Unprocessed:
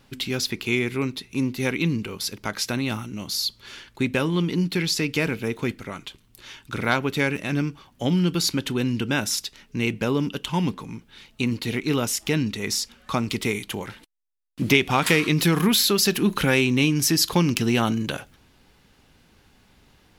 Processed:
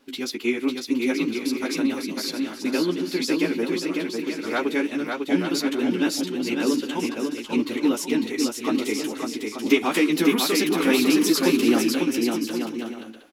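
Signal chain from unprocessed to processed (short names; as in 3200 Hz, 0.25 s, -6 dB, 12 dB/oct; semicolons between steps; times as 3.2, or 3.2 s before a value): chorus 2.7 Hz, delay 16.5 ms, depth 2.5 ms; time stretch by phase-locked vocoder 0.66×; resonant low shelf 190 Hz -14 dB, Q 3; on a send: bouncing-ball echo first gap 0.55 s, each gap 0.6×, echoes 5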